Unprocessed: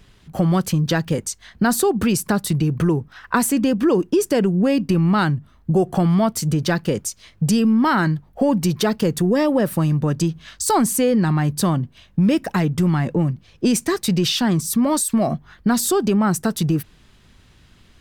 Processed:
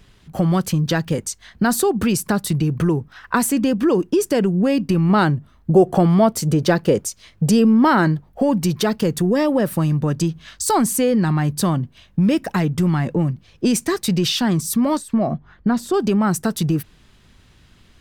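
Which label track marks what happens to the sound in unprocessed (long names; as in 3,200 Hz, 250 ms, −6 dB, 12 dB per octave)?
5.090000	8.280000	dynamic equaliser 490 Hz, up to +7 dB, over −34 dBFS, Q 0.84
14.970000	15.940000	low-pass filter 1,400 Hz 6 dB per octave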